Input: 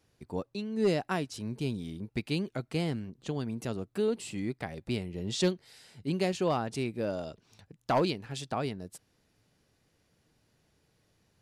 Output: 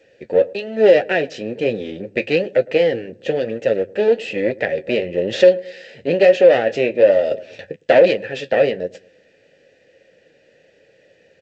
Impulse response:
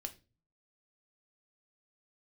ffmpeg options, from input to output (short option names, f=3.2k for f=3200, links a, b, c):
-filter_complex "[0:a]aeval=exprs='clip(val(0),-1,0.00794)':c=same,highpass=f=56:p=1,asettb=1/sr,asplit=3[a][b][c];[a]atrim=end=3.354[d];[b]atrim=start=3.35:end=4.12,asetpts=PTS-STARTPTS,afade=t=in:d=0.004:c=qsin,afade=t=out:st=0.766:d=0.004:c=qsin,aeval=exprs='sgn(val(0))*max(abs(val(0))-0.00316,0)':c=same[e];[c]atrim=start=4.116[f];[d][e]acrossfade=d=0.004:c1=hsin:c2=qsin[g];[g][f]acrossfade=d=0.004:c1=qsin:c2=hsin,asplit=3[h][i][j];[h]bandpass=f=530:t=q:w=8,volume=0dB[k];[i]bandpass=f=1.84k:t=q:w=8,volume=-6dB[l];[j]bandpass=f=2.48k:t=q:w=8,volume=-9dB[m];[k][l][m]amix=inputs=3:normalize=0,bandreject=f=50:t=h:w=6,bandreject=f=100:t=h:w=6,asettb=1/sr,asplit=3[n][o][p];[n]atrim=end=6.014[q];[o]atrim=start=6.01:end=6.79,asetpts=PTS-STARTPTS,afade=t=in:d=0.004:c=qsin,afade=t=out:st=0.776:d=0.004:c=qsin,asplit=2[r][s];[s]adelay=30,volume=-13.5dB[t];[r][t]amix=inputs=2:normalize=0,atrim=end_sample=34398[u];[p]atrim=start=6.786[v];[q][u]acrossfade=d=0.004:c1=hsin:c2=qsin[w];[w][v]acrossfade=d=0.004:c1=qsin:c2=hsin,lowshelf=f=100:g=7.5,flanger=delay=9.1:depth=3.9:regen=-47:speed=1.1:shape=sinusoidal,asplit=2[x][y];[y]adelay=109,lowpass=f=870:p=1,volume=-21dB,asplit=2[z][aa];[aa]adelay=109,lowpass=f=870:p=1,volume=0.45,asplit=2[ab][ac];[ac]adelay=109,lowpass=f=870:p=1,volume=0.45[ad];[z][ab][ad]amix=inputs=3:normalize=0[ae];[x][ae]amix=inputs=2:normalize=0,asettb=1/sr,asplit=3[af][ag][ah];[af]atrim=end=7.314[ai];[ag]atrim=start=7.31:end=7.76,asetpts=PTS-STARTPTS,afade=t=in:d=0.004:c=qsin,afade=t=out:st=0.446:d=0.004:c=qsin,acontrast=73[aj];[ah]atrim=start=7.756[ak];[ai][aj]acrossfade=d=0.004:c1=hsin:c2=qsin[al];[al][ak]acrossfade=d=0.004:c1=qsin:c2=hsin,alimiter=level_in=35dB:limit=-1dB:release=50:level=0:latency=1,volume=-1dB" -ar 16000 -c:a g722